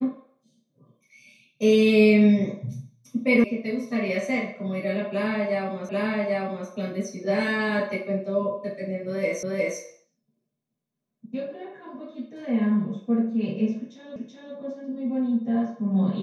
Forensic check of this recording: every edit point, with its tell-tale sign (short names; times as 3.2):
3.44 sound cut off
5.89 repeat of the last 0.79 s
9.43 repeat of the last 0.36 s
14.16 repeat of the last 0.38 s